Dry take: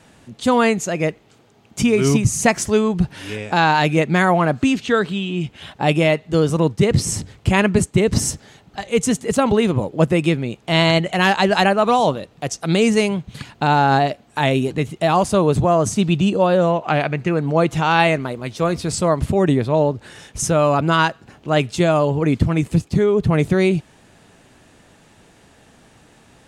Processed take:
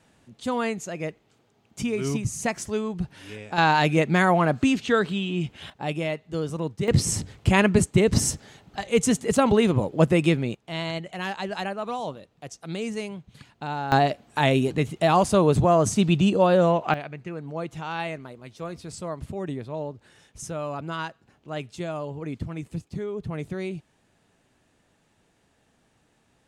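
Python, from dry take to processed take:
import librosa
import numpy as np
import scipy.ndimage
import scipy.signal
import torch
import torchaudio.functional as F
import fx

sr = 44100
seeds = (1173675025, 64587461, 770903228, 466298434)

y = fx.gain(x, sr, db=fx.steps((0.0, -11.0), (3.58, -4.0), (5.7, -12.0), (6.88, -3.0), (10.55, -15.0), (13.92, -3.0), (16.94, -15.5)))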